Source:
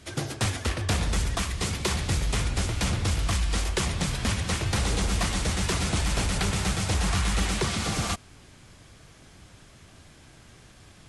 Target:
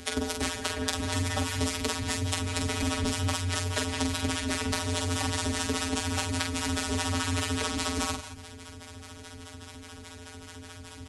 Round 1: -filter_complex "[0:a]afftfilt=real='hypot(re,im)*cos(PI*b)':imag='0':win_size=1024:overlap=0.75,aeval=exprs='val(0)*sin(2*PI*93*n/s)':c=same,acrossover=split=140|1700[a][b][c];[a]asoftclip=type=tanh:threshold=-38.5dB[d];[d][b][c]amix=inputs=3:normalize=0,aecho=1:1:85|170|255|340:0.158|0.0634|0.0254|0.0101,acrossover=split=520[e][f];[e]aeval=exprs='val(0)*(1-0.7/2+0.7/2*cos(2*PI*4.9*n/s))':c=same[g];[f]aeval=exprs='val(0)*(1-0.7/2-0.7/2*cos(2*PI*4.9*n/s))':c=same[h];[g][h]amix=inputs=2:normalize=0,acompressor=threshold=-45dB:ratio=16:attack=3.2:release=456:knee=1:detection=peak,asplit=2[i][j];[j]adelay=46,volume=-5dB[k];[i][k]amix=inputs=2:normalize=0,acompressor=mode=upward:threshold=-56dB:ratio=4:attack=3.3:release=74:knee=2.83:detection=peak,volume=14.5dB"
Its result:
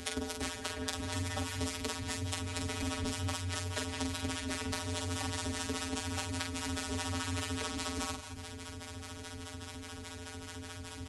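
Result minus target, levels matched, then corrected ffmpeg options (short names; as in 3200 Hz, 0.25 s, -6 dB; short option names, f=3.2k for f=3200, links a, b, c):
compressor: peak gain reduction +7 dB
-filter_complex "[0:a]afftfilt=real='hypot(re,im)*cos(PI*b)':imag='0':win_size=1024:overlap=0.75,aeval=exprs='val(0)*sin(2*PI*93*n/s)':c=same,acrossover=split=140|1700[a][b][c];[a]asoftclip=type=tanh:threshold=-38.5dB[d];[d][b][c]amix=inputs=3:normalize=0,aecho=1:1:85|170|255|340:0.158|0.0634|0.0254|0.0101,acrossover=split=520[e][f];[e]aeval=exprs='val(0)*(1-0.7/2+0.7/2*cos(2*PI*4.9*n/s))':c=same[g];[f]aeval=exprs='val(0)*(1-0.7/2-0.7/2*cos(2*PI*4.9*n/s))':c=same[h];[g][h]amix=inputs=2:normalize=0,acompressor=threshold=-37.5dB:ratio=16:attack=3.2:release=456:knee=1:detection=peak,asplit=2[i][j];[j]adelay=46,volume=-5dB[k];[i][k]amix=inputs=2:normalize=0,acompressor=mode=upward:threshold=-56dB:ratio=4:attack=3.3:release=74:knee=2.83:detection=peak,volume=14.5dB"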